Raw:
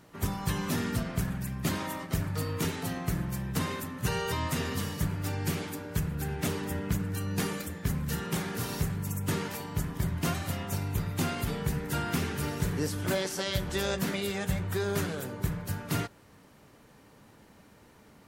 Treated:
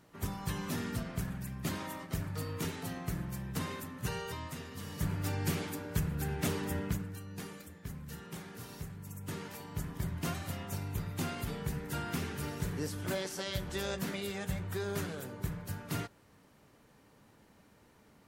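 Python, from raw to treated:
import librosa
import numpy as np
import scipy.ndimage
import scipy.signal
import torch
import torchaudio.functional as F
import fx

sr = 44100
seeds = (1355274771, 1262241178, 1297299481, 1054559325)

y = fx.gain(x, sr, db=fx.line((4.04, -6.0), (4.71, -14.0), (5.1, -2.0), (6.82, -2.0), (7.24, -13.0), (8.98, -13.0), (9.88, -6.0)))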